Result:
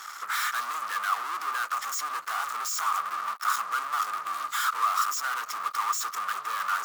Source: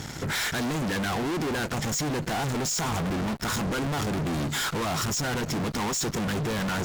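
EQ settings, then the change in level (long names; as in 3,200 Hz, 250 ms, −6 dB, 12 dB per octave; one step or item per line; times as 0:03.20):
high-pass with resonance 1,200 Hz, resonance Q 15
high-shelf EQ 9,800 Hz +11.5 dB
−7.0 dB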